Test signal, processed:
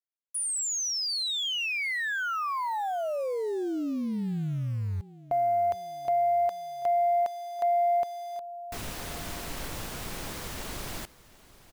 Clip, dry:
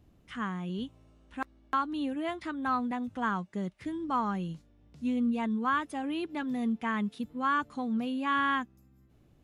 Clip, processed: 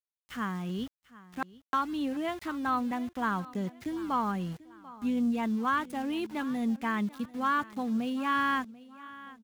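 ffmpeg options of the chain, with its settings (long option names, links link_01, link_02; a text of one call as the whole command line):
ffmpeg -i in.wav -af "aeval=exprs='val(0)*gte(abs(val(0)),0.00531)':channel_layout=same,aecho=1:1:740|1480|2220:0.106|0.0424|0.0169,aeval=exprs='0.119*(cos(1*acos(clip(val(0)/0.119,-1,1)))-cos(1*PI/2))+0.00422*(cos(5*acos(clip(val(0)/0.119,-1,1)))-cos(5*PI/2))+0.000944*(cos(7*acos(clip(val(0)/0.119,-1,1)))-cos(7*PI/2))':channel_layout=same" out.wav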